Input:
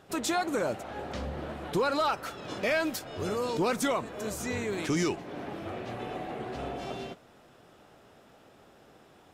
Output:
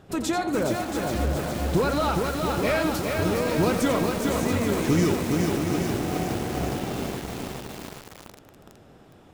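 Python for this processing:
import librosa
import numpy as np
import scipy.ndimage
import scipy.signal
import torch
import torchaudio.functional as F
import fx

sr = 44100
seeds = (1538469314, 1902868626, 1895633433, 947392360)

y = fx.low_shelf(x, sr, hz=280.0, db=12.0)
y = fx.echo_multitap(y, sr, ms=(88, 679), db=(-9.5, -8.5))
y = fx.echo_crushed(y, sr, ms=413, feedback_pct=80, bits=6, wet_db=-3.0)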